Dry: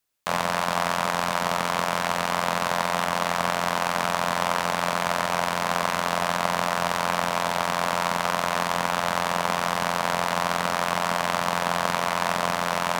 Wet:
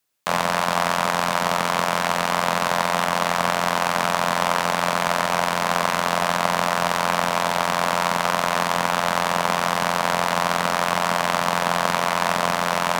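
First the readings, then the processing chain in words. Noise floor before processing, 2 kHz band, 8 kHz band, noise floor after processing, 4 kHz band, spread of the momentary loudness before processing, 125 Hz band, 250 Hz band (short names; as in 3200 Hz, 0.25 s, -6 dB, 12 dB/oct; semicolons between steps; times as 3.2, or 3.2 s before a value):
-29 dBFS, +3.5 dB, +3.5 dB, -25 dBFS, +3.5 dB, 0 LU, +3.0 dB, +3.5 dB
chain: HPF 87 Hz; gain +3.5 dB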